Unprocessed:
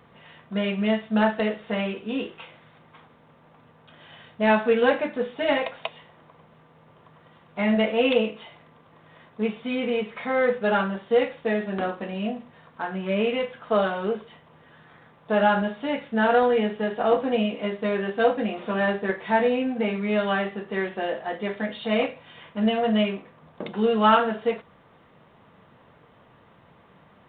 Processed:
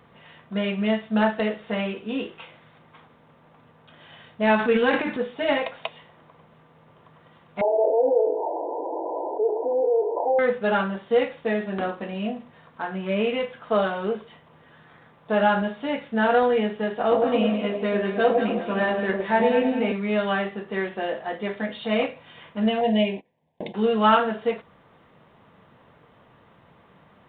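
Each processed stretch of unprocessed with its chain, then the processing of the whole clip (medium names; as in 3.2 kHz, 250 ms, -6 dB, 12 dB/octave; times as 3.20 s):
4.55–5.21 s: transient shaper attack +2 dB, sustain +9 dB + peaking EQ 610 Hz -9.5 dB 0.4 oct
7.61–10.39 s: CVSD coder 32 kbps + brick-wall FIR band-pass 290–1000 Hz + level flattener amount 70%
17.01–19.92 s: echo whose repeats swap between lows and highs 103 ms, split 840 Hz, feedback 61%, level -2.5 dB + tape noise reduction on one side only decoder only
22.81–23.75 s: gate -40 dBFS, range -20 dB + Butterworth band-stop 1.3 kHz, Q 1.3 + peaking EQ 990 Hz +5 dB 1.3 oct
whole clip: none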